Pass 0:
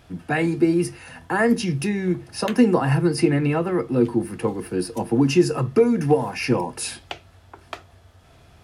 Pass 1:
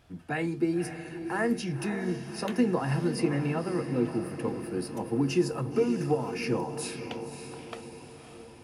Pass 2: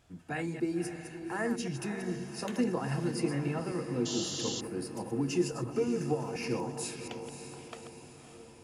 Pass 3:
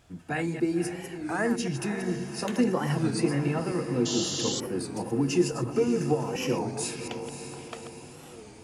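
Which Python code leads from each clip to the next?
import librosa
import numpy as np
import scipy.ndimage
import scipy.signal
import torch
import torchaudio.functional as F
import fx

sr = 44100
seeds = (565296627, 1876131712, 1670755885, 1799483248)

y1 = fx.echo_diffused(x, sr, ms=560, feedback_pct=56, wet_db=-9.0)
y1 = F.gain(torch.from_numpy(y1), -9.0).numpy()
y2 = fx.reverse_delay(y1, sr, ms=120, wet_db=-8.5)
y2 = fx.peak_eq(y2, sr, hz=7200.0, db=9.0, octaves=0.55)
y2 = fx.spec_paint(y2, sr, seeds[0], shape='noise', start_s=4.05, length_s=0.56, low_hz=2700.0, high_hz=7500.0, level_db=-33.0)
y2 = F.gain(torch.from_numpy(y2), -5.0).numpy()
y3 = fx.record_warp(y2, sr, rpm=33.33, depth_cents=160.0)
y3 = F.gain(torch.from_numpy(y3), 5.5).numpy()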